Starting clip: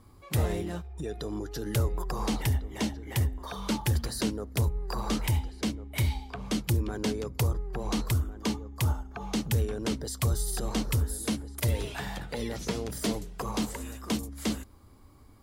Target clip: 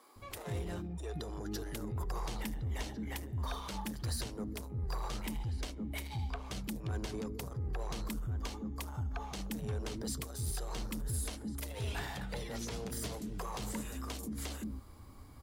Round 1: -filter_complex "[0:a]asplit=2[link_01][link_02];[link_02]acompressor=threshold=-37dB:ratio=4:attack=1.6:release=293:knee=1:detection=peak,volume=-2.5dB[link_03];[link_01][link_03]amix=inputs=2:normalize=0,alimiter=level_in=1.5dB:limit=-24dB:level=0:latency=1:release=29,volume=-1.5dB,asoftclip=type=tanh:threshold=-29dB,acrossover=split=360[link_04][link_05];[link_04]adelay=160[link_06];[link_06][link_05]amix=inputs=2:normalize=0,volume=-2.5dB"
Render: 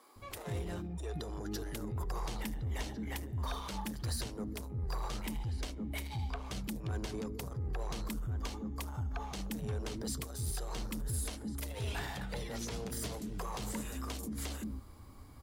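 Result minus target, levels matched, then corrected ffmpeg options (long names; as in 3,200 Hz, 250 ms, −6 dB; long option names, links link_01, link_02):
downward compressor: peak gain reduction −6.5 dB
-filter_complex "[0:a]asplit=2[link_01][link_02];[link_02]acompressor=threshold=-45.5dB:ratio=4:attack=1.6:release=293:knee=1:detection=peak,volume=-2.5dB[link_03];[link_01][link_03]amix=inputs=2:normalize=0,alimiter=level_in=1.5dB:limit=-24dB:level=0:latency=1:release=29,volume=-1.5dB,asoftclip=type=tanh:threshold=-29dB,acrossover=split=360[link_04][link_05];[link_04]adelay=160[link_06];[link_06][link_05]amix=inputs=2:normalize=0,volume=-2.5dB"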